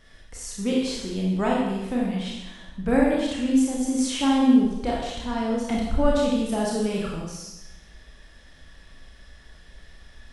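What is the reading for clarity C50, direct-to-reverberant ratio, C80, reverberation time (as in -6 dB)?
0.5 dB, -4.0 dB, 3.5 dB, 0.95 s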